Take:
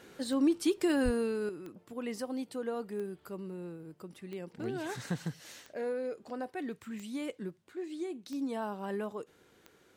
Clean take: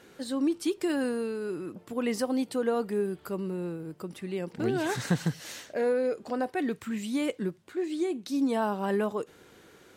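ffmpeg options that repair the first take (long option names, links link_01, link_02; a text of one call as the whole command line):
ffmpeg -i in.wav -filter_complex "[0:a]adeclick=threshold=4,asplit=3[link_01][link_02][link_03];[link_01]afade=type=out:start_time=1.04:duration=0.02[link_04];[link_02]highpass=frequency=140:width=0.5412,highpass=frequency=140:width=1.3066,afade=type=in:start_time=1.04:duration=0.02,afade=type=out:start_time=1.16:duration=0.02[link_05];[link_03]afade=type=in:start_time=1.16:duration=0.02[link_06];[link_04][link_05][link_06]amix=inputs=3:normalize=0,asetnsamples=nb_out_samples=441:pad=0,asendcmd='1.49 volume volume 8.5dB',volume=0dB" out.wav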